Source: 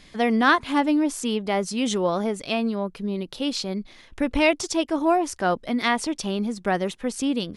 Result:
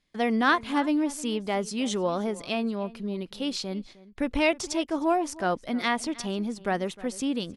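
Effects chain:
noise gate with hold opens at −36 dBFS
slap from a distant wall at 53 metres, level −19 dB
level −4 dB

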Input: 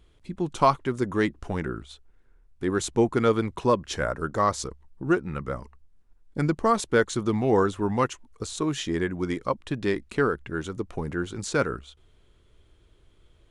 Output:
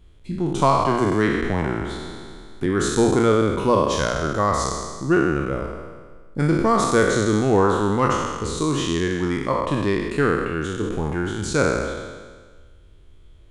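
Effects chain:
peak hold with a decay on every bin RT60 1.52 s
low-shelf EQ 220 Hz +7 dB
mains-hum notches 60/120 Hz
0:00.58–0:02.66: multiband upward and downward compressor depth 40%

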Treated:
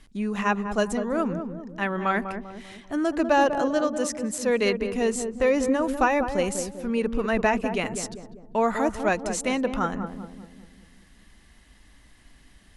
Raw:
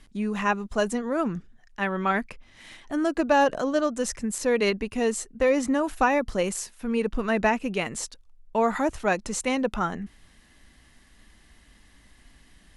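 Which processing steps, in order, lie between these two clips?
0:03.70–0:04.47: high-pass filter 150 Hz 6 dB per octave
on a send: feedback echo with a low-pass in the loop 197 ms, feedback 54%, low-pass 800 Hz, level −6 dB

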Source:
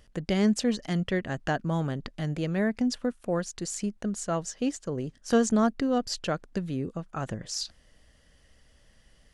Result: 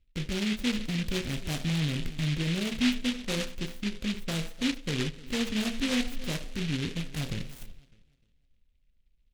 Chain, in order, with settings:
adaptive Wiener filter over 9 samples
noise gate −49 dBFS, range −21 dB
spectral tilt −4 dB per octave
bucket-brigade delay 302 ms, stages 2,048, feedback 30%, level −21 dB
brickwall limiter −17 dBFS, peak gain reduction 11 dB
on a send at −6 dB: low-shelf EQ 330 Hz +6.5 dB + convolution reverb, pre-delay 3 ms
on the sum: short delay modulated by noise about 2,700 Hz, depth 0.28 ms
level −7 dB

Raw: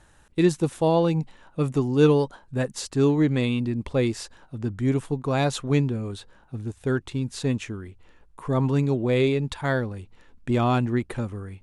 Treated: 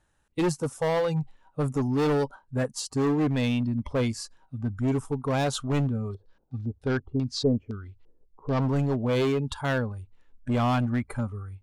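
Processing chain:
noise reduction from a noise print of the clip's start 14 dB
hard clipping −21 dBFS, distortion −9 dB
0:06.09–0:08.60: auto-filter low-pass square 4.8 Hz → 0.91 Hz 450–4,900 Hz

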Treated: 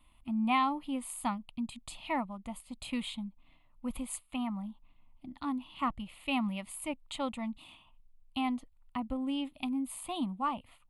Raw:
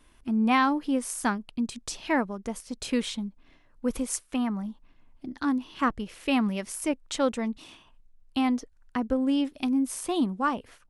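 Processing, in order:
phaser with its sweep stopped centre 1,600 Hz, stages 6
level −3.5 dB

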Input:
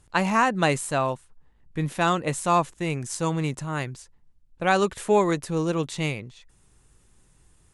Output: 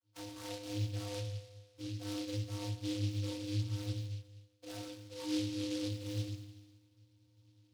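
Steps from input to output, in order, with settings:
reversed playback
downward compressor 12 to 1, threshold −33 dBFS, peak gain reduction 18.5 dB
reversed playback
tuned comb filter 170 Hz, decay 1.6 s, mix 80%
ring modulation 30 Hz
in parallel at −6 dB: comparator with hysteresis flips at −49.5 dBFS
on the sum: channel vocoder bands 32, square 102 Hz
convolution reverb RT60 0.50 s, pre-delay 6 ms, DRR −1.5 dB
short delay modulated by noise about 3,800 Hz, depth 0.15 ms
level +8.5 dB

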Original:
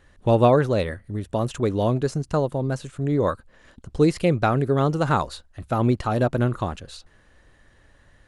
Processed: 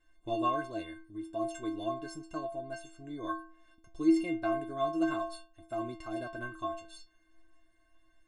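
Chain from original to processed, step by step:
stiff-string resonator 320 Hz, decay 0.51 s, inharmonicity 0.03
level +6 dB

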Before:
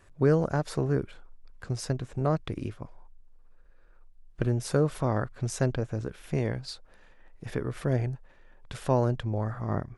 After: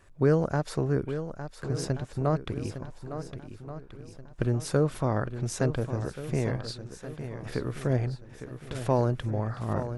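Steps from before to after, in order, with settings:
feedback echo with a long and a short gap by turns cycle 1,430 ms, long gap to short 1.5 to 1, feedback 36%, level −10.5 dB

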